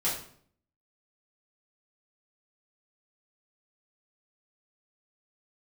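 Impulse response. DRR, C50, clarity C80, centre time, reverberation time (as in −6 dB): −9.5 dB, 5.0 dB, 9.5 dB, 38 ms, 0.55 s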